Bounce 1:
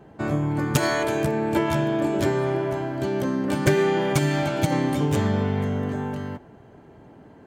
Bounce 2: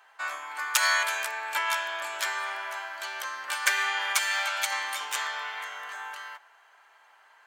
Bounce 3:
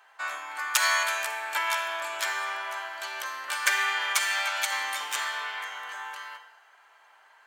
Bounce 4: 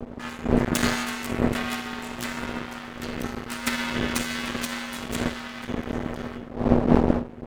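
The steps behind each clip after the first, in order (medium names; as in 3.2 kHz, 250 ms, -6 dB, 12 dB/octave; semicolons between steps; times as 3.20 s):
high-pass 1.1 kHz 24 dB/octave; trim +4.5 dB
reverberation RT60 0.90 s, pre-delay 37 ms, DRR 10 dB
wind noise 270 Hz -25 dBFS; half-wave rectifier; ring modulator 240 Hz; trim +3.5 dB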